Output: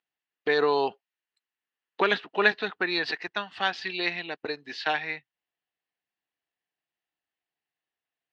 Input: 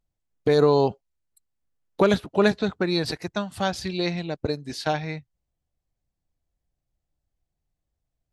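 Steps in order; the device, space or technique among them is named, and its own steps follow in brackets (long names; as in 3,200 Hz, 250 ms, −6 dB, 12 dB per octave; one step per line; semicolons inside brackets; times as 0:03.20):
phone earpiece (loudspeaker in its box 480–4,400 Hz, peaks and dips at 570 Hz −9 dB, 1,800 Hz +9 dB, 2,800 Hz +8 dB)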